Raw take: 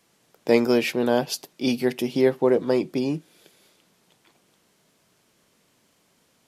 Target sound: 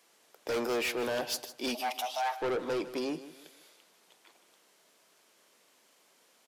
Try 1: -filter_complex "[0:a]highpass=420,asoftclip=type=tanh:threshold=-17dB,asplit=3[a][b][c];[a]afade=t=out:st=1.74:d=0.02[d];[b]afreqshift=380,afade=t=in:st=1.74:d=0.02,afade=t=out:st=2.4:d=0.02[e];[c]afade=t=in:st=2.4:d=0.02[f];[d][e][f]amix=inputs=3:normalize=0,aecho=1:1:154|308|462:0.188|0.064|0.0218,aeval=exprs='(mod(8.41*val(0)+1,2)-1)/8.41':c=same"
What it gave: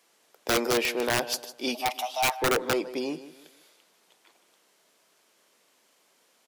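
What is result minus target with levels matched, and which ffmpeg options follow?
soft clip: distortion -9 dB
-filter_complex "[0:a]highpass=420,asoftclip=type=tanh:threshold=-28.5dB,asplit=3[a][b][c];[a]afade=t=out:st=1.74:d=0.02[d];[b]afreqshift=380,afade=t=in:st=1.74:d=0.02,afade=t=out:st=2.4:d=0.02[e];[c]afade=t=in:st=2.4:d=0.02[f];[d][e][f]amix=inputs=3:normalize=0,aecho=1:1:154|308|462:0.188|0.064|0.0218,aeval=exprs='(mod(8.41*val(0)+1,2)-1)/8.41':c=same"

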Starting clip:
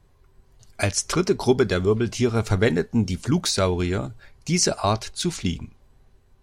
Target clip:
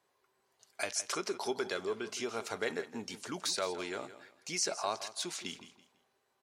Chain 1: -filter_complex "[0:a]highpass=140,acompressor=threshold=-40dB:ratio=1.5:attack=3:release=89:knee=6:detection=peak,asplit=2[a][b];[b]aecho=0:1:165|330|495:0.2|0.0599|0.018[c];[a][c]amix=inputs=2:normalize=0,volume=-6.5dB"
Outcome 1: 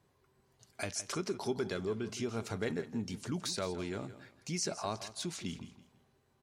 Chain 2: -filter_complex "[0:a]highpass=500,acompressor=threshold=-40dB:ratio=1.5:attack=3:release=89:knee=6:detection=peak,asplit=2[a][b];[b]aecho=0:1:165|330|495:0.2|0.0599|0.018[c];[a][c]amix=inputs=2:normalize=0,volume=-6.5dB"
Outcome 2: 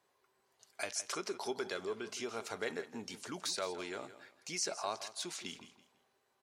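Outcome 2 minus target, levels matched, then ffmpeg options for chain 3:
compressor: peak gain reduction +3.5 dB
-filter_complex "[0:a]highpass=500,acompressor=threshold=-29.5dB:ratio=1.5:attack=3:release=89:knee=6:detection=peak,asplit=2[a][b];[b]aecho=0:1:165|330|495:0.2|0.0599|0.018[c];[a][c]amix=inputs=2:normalize=0,volume=-6.5dB"

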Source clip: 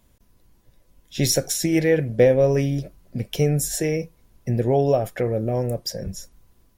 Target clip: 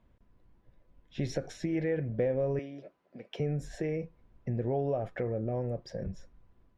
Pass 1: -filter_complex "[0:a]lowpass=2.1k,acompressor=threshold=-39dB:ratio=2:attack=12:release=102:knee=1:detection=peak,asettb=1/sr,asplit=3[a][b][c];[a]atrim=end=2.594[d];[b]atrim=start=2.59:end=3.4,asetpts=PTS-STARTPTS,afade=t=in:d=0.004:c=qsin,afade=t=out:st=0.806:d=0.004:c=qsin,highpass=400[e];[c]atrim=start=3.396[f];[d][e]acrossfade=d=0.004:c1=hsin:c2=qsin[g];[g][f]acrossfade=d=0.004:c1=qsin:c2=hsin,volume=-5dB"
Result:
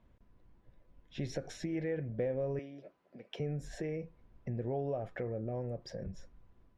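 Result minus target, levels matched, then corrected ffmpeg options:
compressor: peak gain reduction +5 dB
-filter_complex "[0:a]lowpass=2.1k,acompressor=threshold=-29dB:ratio=2:attack=12:release=102:knee=1:detection=peak,asettb=1/sr,asplit=3[a][b][c];[a]atrim=end=2.594[d];[b]atrim=start=2.59:end=3.4,asetpts=PTS-STARTPTS,afade=t=in:d=0.004:c=qsin,afade=t=out:st=0.806:d=0.004:c=qsin,highpass=400[e];[c]atrim=start=3.396[f];[d][e]acrossfade=d=0.004:c1=hsin:c2=qsin[g];[g][f]acrossfade=d=0.004:c1=qsin:c2=hsin,volume=-5dB"

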